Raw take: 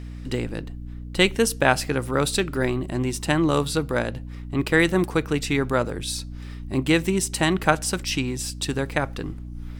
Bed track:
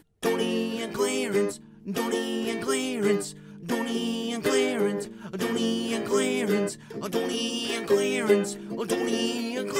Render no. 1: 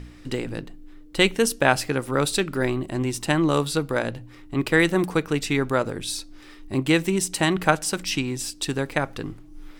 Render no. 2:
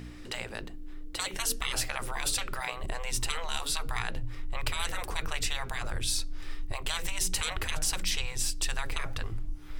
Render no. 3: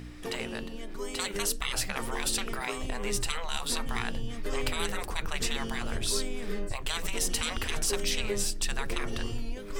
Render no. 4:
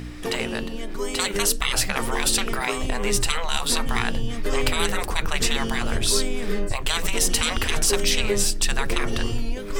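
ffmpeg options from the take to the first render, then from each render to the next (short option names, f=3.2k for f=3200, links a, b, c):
-af "bandreject=f=60:t=h:w=4,bandreject=f=120:t=h:w=4,bandreject=f=180:t=h:w=4,bandreject=f=240:t=h:w=4"
-af "afftfilt=real='re*lt(hypot(re,im),0.112)':imag='im*lt(hypot(re,im),0.112)':win_size=1024:overlap=0.75,asubboost=boost=9:cutoff=79"
-filter_complex "[1:a]volume=-12.5dB[a];[0:a][a]amix=inputs=2:normalize=0"
-af "volume=8.5dB"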